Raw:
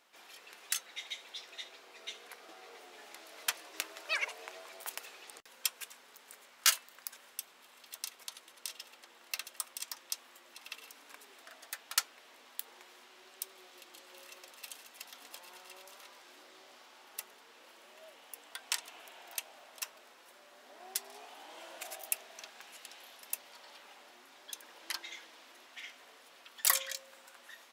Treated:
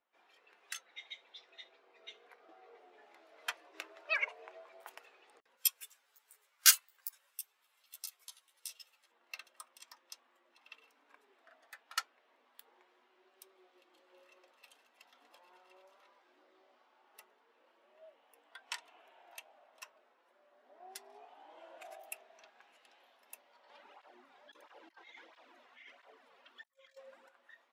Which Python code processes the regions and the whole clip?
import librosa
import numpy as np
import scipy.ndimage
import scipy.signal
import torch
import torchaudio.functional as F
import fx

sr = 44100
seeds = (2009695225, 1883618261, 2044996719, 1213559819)

y = fx.chain(x, sr, fx.riaa(side='recording'),
    fx.ensemble(), at=(5.57, 9.12))
y = fx.chain(y, sr, fx.over_compress(threshold_db=-50.0, ratio=-1.0),
    fx.flanger_cancel(hz=1.5, depth_ms=3.5), at=(23.69, 27.29))
y = fx.high_shelf(y, sr, hz=3300.0, db=-9.5)
y = fx.spectral_expand(y, sr, expansion=1.5)
y = y * 10.0 ** (4.0 / 20.0)